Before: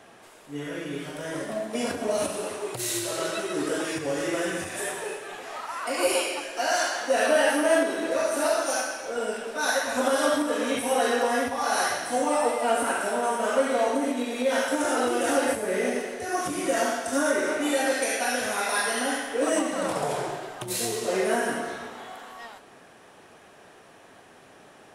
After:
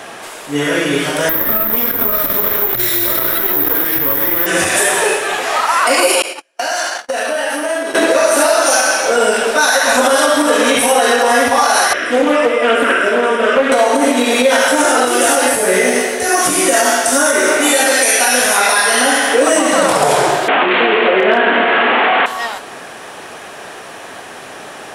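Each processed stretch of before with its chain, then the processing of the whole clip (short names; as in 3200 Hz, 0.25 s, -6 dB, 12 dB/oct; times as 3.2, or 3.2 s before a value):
1.29–4.46 minimum comb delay 0.55 ms + air absorption 170 m + careless resampling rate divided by 3×, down none, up zero stuff
6.22–7.95 gate -29 dBFS, range -47 dB + compressor 5:1, threshold -37 dBFS + short-mantissa float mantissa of 6-bit
11.93–13.72 polynomial smoothing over 25 samples + fixed phaser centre 340 Hz, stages 4 + Doppler distortion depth 0.18 ms
15.05–18.58 high shelf 6400 Hz +6.5 dB + resonator 63 Hz, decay 0.17 s, mix 80%
20.48–22.26 delta modulation 16 kbps, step -25 dBFS + overloaded stage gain 15 dB + steep high-pass 190 Hz 48 dB/oct
whole clip: low shelf 400 Hz -8.5 dB; compressor, threshold -29 dBFS; maximiser +23 dB; gain -1 dB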